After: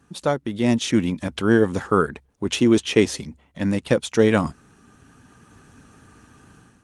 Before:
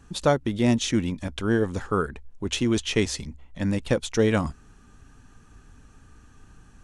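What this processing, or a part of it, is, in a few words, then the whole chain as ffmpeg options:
video call: -filter_complex "[0:a]asplit=3[a][b][c];[a]afade=t=out:st=2.58:d=0.02[d];[b]adynamicequalizer=threshold=0.0224:dfrequency=380:dqfactor=0.87:tfrequency=380:tqfactor=0.87:attack=5:release=100:ratio=0.375:range=2:mode=boostabove:tftype=bell,afade=t=in:st=2.58:d=0.02,afade=t=out:st=3.21:d=0.02[e];[c]afade=t=in:st=3.21:d=0.02[f];[d][e][f]amix=inputs=3:normalize=0,highpass=120,dynaudnorm=f=470:g=3:m=10dB,volume=-1.5dB" -ar 48000 -c:a libopus -b:a 32k

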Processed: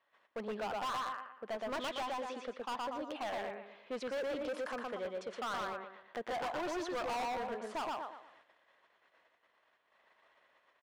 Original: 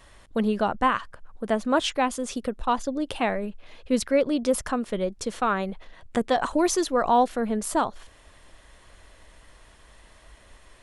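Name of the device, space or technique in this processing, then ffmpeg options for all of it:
walkie-talkie: -af "highpass=570,lowpass=2.6k,equalizer=f=120:t=o:w=2:g=4.5,aecho=1:1:118|236|354|472|590:0.708|0.248|0.0867|0.0304|0.0106,asoftclip=type=hard:threshold=-28dB,agate=range=-13dB:threshold=-55dB:ratio=16:detection=peak,volume=-7dB"

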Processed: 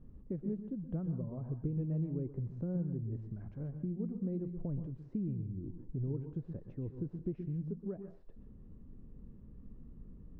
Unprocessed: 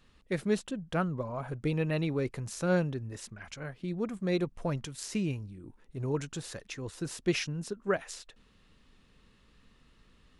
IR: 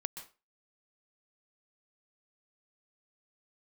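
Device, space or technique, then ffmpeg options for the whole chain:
television next door: -filter_complex "[0:a]acompressor=threshold=-49dB:ratio=3,lowpass=290[a];[1:a]atrim=start_sample=2205[b];[a][b]afir=irnorm=-1:irlink=0,volume=12.5dB"

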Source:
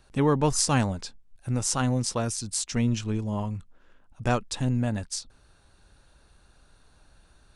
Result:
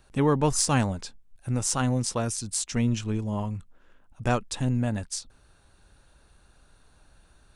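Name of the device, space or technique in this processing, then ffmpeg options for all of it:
exciter from parts: -filter_complex "[0:a]asplit=2[a][b];[b]highpass=f=4.3k:w=0.5412,highpass=f=4.3k:w=1.3066,asoftclip=type=tanh:threshold=-22dB,volume=-11dB[c];[a][c]amix=inputs=2:normalize=0"

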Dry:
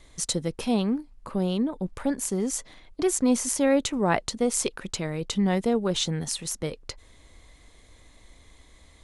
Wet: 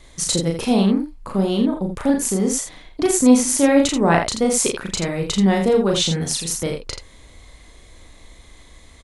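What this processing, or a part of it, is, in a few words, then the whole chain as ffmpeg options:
slapback doubling: -filter_complex "[0:a]asplit=3[a][b][c];[b]adelay=36,volume=-3dB[d];[c]adelay=83,volume=-7dB[e];[a][d][e]amix=inputs=3:normalize=0,volume=5.5dB"

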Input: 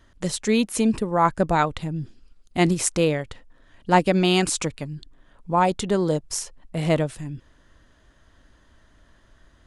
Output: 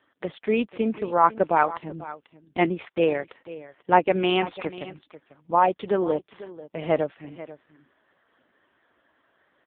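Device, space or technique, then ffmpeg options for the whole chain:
satellite phone: -af "highpass=330,lowpass=3.1k,aecho=1:1:491:0.15,volume=1.5dB" -ar 8000 -c:a libopencore_amrnb -b:a 5150

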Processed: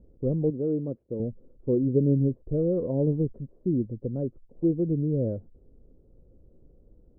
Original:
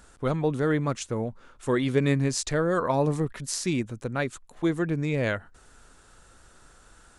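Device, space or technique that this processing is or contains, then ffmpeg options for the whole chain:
under water: -filter_complex "[0:a]asettb=1/sr,asplit=3[a][b][c];[a]atrim=end=0.504[d];[b]atrim=start=0.5:end=1.2,asetpts=PTS-STARTPTS,afade=t=in:d=0.004:c=qsin,afade=t=out:st=0.696:d=0.004:c=qsin,highpass=f=300:p=1[e];[c]atrim=start=1.196[f];[d][e]acrossfade=d=0.004:c1=hsin:c2=qsin[g];[g][f]acrossfade=d=0.004:c1=qsin:c2=hsin,lowpass=f=410:w=0.5412,lowpass=f=410:w=1.3066,equalizer=f=530:t=o:w=0.4:g=7.5,volume=1.5dB"

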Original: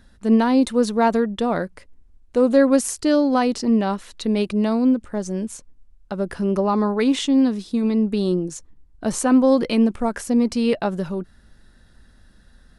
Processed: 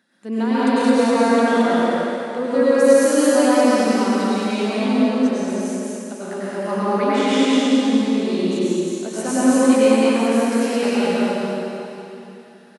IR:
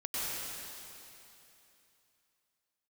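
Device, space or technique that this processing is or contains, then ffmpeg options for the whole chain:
stadium PA: -filter_complex "[0:a]highpass=f=200:w=0.5412,highpass=f=200:w=1.3066,equalizer=f=2.2k:t=o:w=0.92:g=5,aecho=1:1:166.2|218.7:0.316|0.891[a];[1:a]atrim=start_sample=2205[b];[a][b]afir=irnorm=-1:irlink=0,volume=-5dB"

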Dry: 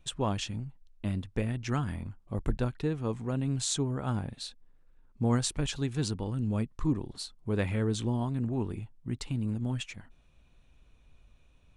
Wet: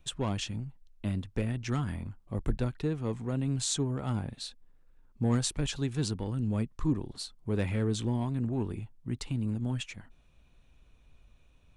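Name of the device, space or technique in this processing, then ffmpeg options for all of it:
one-band saturation: -filter_complex "[0:a]acrossover=split=400|2800[a][b][c];[b]asoftclip=type=tanh:threshold=-32dB[d];[a][d][c]amix=inputs=3:normalize=0"

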